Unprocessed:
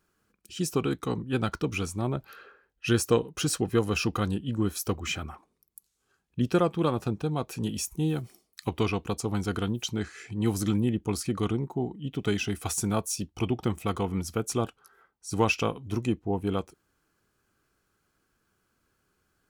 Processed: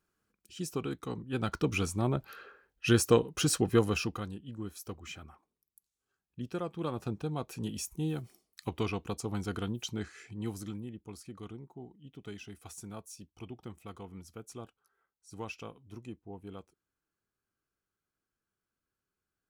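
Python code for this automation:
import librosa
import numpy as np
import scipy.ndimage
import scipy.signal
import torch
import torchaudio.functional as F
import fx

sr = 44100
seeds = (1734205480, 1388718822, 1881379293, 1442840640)

y = fx.gain(x, sr, db=fx.line((1.25, -8.0), (1.65, -0.5), (3.83, -0.5), (4.32, -13.0), (6.58, -13.0), (7.11, -6.0), (10.16, -6.0), (10.89, -17.0)))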